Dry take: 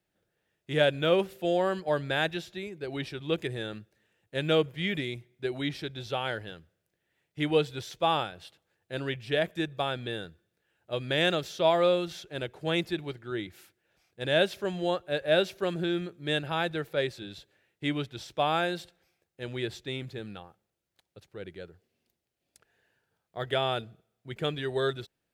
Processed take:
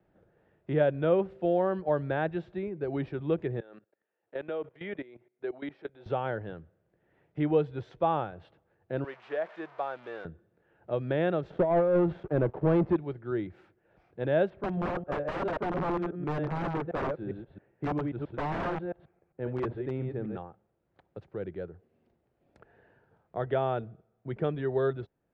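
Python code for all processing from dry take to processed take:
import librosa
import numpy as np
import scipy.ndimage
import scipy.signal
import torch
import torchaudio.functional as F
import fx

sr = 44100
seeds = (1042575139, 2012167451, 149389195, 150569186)

y = fx.chain(x, sr, fx.highpass(hz=430.0, slope=12),
    fx.level_steps(step_db=18), at=(3.6, 6.06))
y = fx.chain(y, sr, fx.crossing_spikes(level_db=-20.5),
    fx.highpass(hz=710.0, slope=12),
    fx.spacing_loss(db_at_10k=25), at=(9.04, 10.25))
y = fx.chain(y, sr, fx.over_compress(threshold_db=-26.0, ratio=-0.5),
    fx.spacing_loss(db_at_10k=43),
    fx.leveller(passes=3), at=(11.5, 12.96))
y = fx.chain(y, sr, fx.reverse_delay(ms=134, wet_db=-6.0),
    fx.air_absorb(metres=430.0),
    fx.overflow_wrap(gain_db=26.0), at=(14.5, 20.37))
y = scipy.signal.sosfilt(scipy.signal.butter(2, 1100.0, 'lowpass', fs=sr, output='sos'), y)
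y = fx.band_squash(y, sr, depth_pct=40)
y = F.gain(torch.from_numpy(y), 2.0).numpy()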